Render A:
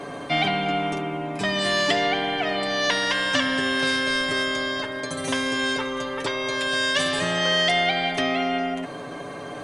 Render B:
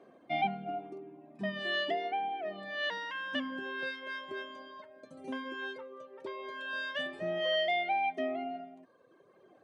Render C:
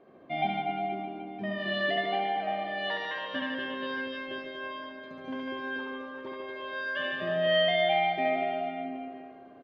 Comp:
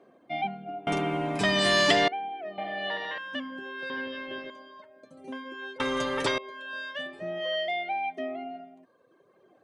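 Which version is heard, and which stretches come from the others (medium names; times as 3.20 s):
B
0.87–2.08 s: from A
2.58–3.18 s: from C
3.90–4.50 s: from C
5.80–6.38 s: from A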